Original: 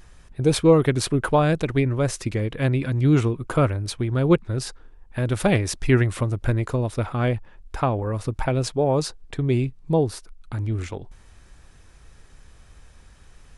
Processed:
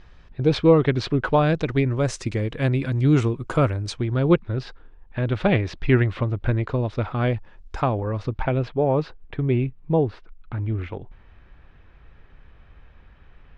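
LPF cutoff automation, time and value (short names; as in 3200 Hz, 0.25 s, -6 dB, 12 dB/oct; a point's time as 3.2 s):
LPF 24 dB/oct
1.05 s 4500 Hz
2.2 s 7900 Hz
3.84 s 7900 Hz
4.46 s 3800 Hz
6.55 s 3800 Hz
7.82 s 7000 Hz
8.66 s 3000 Hz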